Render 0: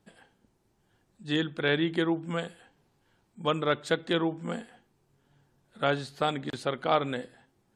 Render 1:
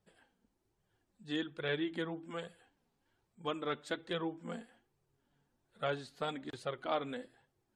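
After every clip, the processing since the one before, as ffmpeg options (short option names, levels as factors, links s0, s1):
-af "flanger=delay=1.5:depth=3.1:regen=-23:speed=1.2:shape=triangular,volume=0.501"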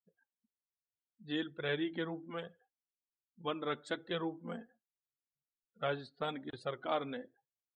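-af "afftdn=nr=35:nf=-55"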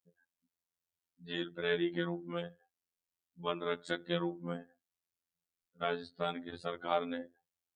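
-af "equalizer=f=110:w=1.5:g=5.5,afftfilt=real='hypot(re,im)*cos(PI*b)':imag='0':win_size=2048:overlap=0.75,volume=1.78"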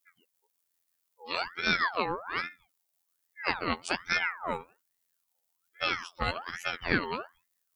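-af "crystalizer=i=1.5:c=0,asubboost=boost=3:cutoff=150,aeval=exprs='val(0)*sin(2*PI*1300*n/s+1300*0.5/1.2*sin(2*PI*1.2*n/s))':c=same,volume=2.51"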